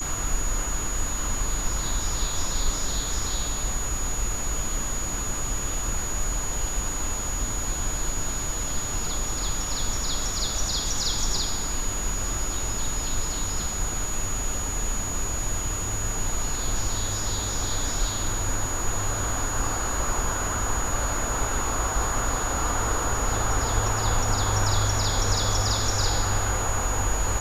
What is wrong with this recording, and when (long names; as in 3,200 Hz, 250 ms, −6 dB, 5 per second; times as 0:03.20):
whistle 6,800 Hz −30 dBFS